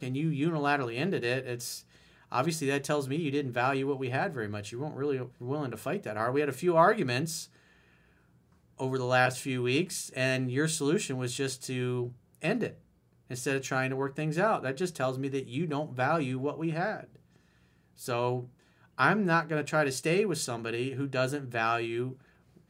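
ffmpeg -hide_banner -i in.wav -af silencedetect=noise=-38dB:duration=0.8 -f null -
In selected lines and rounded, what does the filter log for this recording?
silence_start: 7.44
silence_end: 8.80 | silence_duration: 1.36
silence_start: 17.04
silence_end: 18.01 | silence_duration: 0.97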